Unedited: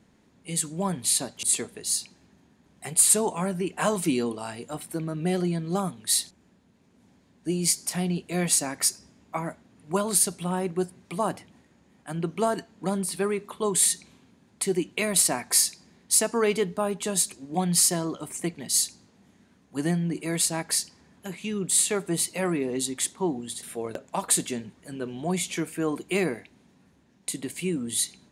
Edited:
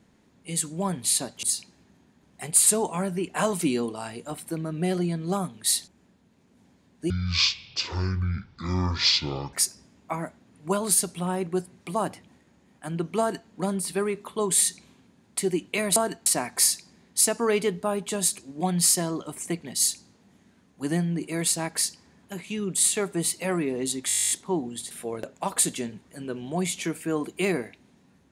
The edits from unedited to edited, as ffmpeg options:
-filter_complex "[0:a]asplit=17[a][b][c][d][e][f][g][h][i][j][k][l][m][n][o][p][q];[a]atrim=end=1.502[r];[b]atrim=start=1.928:end=7.534[s];[c]atrim=start=7.53:end=8.77,asetpts=PTS-STARTPTS,asetrate=22491,aresample=44100[t];[d]atrim=start=8.766:end=15.202[u];[e]atrim=start=12.428:end=12.732[v];[f]atrim=start=15.198:end=23.042[w];[g]atrim=start=23.018:end=23.042[x];[h]atrim=start=23.018:end=23.042[y];[i]atrim=start=23.018:end=23.042[z];[j]atrim=start=23.018:end=23.042[aa];[k]atrim=start=23.018:end=23.042[ab];[l]atrim=start=23.018:end=23.042[ac];[m]atrim=start=23.018:end=23.042[ad];[n]atrim=start=23.018:end=23.042[ae];[o]atrim=start=23.018:end=23.042[af];[p]atrim=start=23.018:end=23.042[ag];[q]atrim=start=23.018[ah];[r][s]acrossfade=d=0.004:c1=hsin:c2=hsin[ai];[ai][t]acrossfade=d=0.004:c1=hsin:c2=hsin[aj];[aj][u]acrossfade=d=0.004:c1=hsin:c2=hsin[ak];[ak][v]acrossfade=d=0.004:c1=hsin:c2=hsin[al];[al][w]acrossfade=d=0.004:c1=hsin:c2=hsin[am];[am][x]acrossfade=d=0.004:c1=hsin:c2=hsin[an];[an][y]acrossfade=d=0.004:c1=hsin:c2=hsin[ao];[ao][z]acrossfade=d=0.004:c1=hsin:c2=hsin[ap];[ap][aa]acrossfade=d=0.004:c1=hsin:c2=hsin[aq];[aq][ab]acrossfade=d=0.004:c1=hsin:c2=hsin[ar];[ar][ac]acrossfade=d=0.004:c1=hsin:c2=hsin[as];[as][ad]acrossfade=d=0.004:c1=hsin:c2=hsin[at];[at][ae]acrossfade=d=0.004:c1=hsin:c2=hsin[au];[au][af]acrossfade=d=0.004:c1=hsin:c2=hsin[av];[av][ag]acrossfade=d=0.004:c1=hsin:c2=hsin[aw];[aw][ah]acrossfade=d=0.004:c1=hsin:c2=hsin"

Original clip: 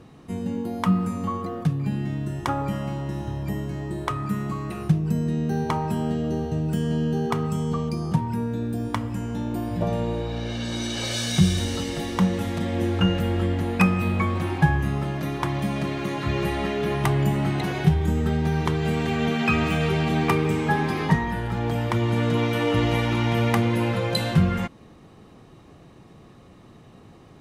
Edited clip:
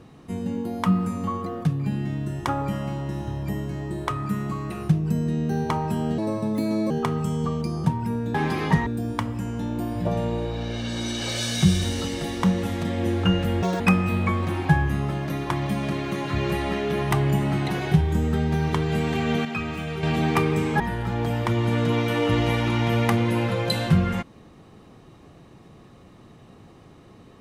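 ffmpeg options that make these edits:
-filter_complex "[0:a]asplit=10[a][b][c][d][e][f][g][h][i][j];[a]atrim=end=6.184[k];[b]atrim=start=6.18:end=7.18,asetpts=PTS-STARTPTS,asetrate=60858,aresample=44100[l];[c]atrim=start=7.176:end=8.622[m];[d]atrim=start=20.728:end=21.252[n];[e]atrim=start=8.618:end=13.384[o];[f]atrim=start=13.38:end=13.73,asetpts=PTS-STARTPTS,asetrate=87759,aresample=44100,atrim=end_sample=7756,asetpts=PTS-STARTPTS[p];[g]atrim=start=13.726:end=19.382[q];[h]atrim=start=19.378:end=19.962,asetpts=PTS-STARTPTS,volume=-7.5dB[r];[i]atrim=start=19.958:end=20.732[s];[j]atrim=start=21.248[t];[k][l]acrossfade=d=0.004:c1=hsin:c2=hsin[u];[u][m]acrossfade=d=0.004:c1=hsin:c2=hsin[v];[v][n]acrossfade=d=0.004:c1=hsin:c2=hsin[w];[w][o]acrossfade=d=0.004:c1=hsin:c2=hsin[x];[x][p]acrossfade=d=0.004:c1=hsin:c2=hsin[y];[y][q]acrossfade=d=0.004:c1=hsin:c2=hsin[z];[z][r]acrossfade=d=0.004:c1=hsin:c2=hsin[aa];[aa][s]acrossfade=d=0.004:c1=hsin:c2=hsin[ab];[ab][t]acrossfade=d=0.004:c1=hsin:c2=hsin"

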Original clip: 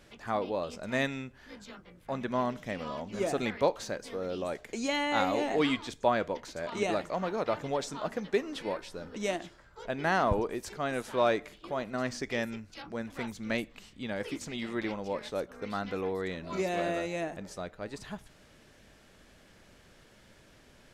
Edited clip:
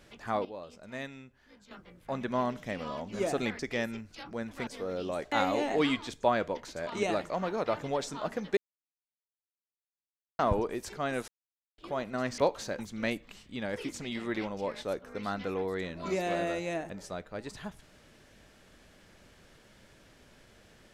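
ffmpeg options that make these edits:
-filter_complex "[0:a]asplit=12[a][b][c][d][e][f][g][h][i][j][k][l];[a]atrim=end=0.452[m];[b]atrim=start=0.448:end=1.712,asetpts=PTS-STARTPTS,volume=-10dB[n];[c]atrim=start=1.708:end=3.592[o];[d]atrim=start=12.178:end=13.262[p];[e]atrim=start=3.998:end=4.652[q];[f]atrim=start=5.118:end=8.37,asetpts=PTS-STARTPTS,afade=t=out:st=3.248:d=0.004:c=hsin[r];[g]atrim=start=8.37:end=10.19,asetpts=PTS-STARTPTS,volume=0[s];[h]atrim=start=10.19:end=11.08,asetpts=PTS-STARTPTS,afade=t=in:d=0.004:c=hsin,afade=t=out:st=0.886:d=0.004:c=hsin[t];[i]atrim=start=11.08:end=11.58,asetpts=PTS-STARTPTS,volume=0[u];[j]atrim=start=11.58:end=12.182,asetpts=PTS-STARTPTS,afade=t=in:d=0.004:c=hsin[v];[k]atrim=start=3.588:end=4.002[w];[l]atrim=start=13.258[x];[m][n]acrossfade=d=0.004:c1=hsin:c2=hsin[y];[y][o]acrossfade=d=0.004:c1=hsin:c2=hsin[z];[z][p]acrossfade=d=0.004:c1=hsin:c2=hsin[aa];[aa][q]acrossfade=d=0.004:c1=hsin:c2=hsin[ab];[r][s][t][u][v]concat=n=5:v=0:a=1[ac];[ab][ac]acrossfade=d=0.004:c1=hsin:c2=hsin[ad];[ad][w]acrossfade=d=0.004:c1=hsin:c2=hsin[ae];[ae][x]acrossfade=d=0.004:c1=hsin:c2=hsin"

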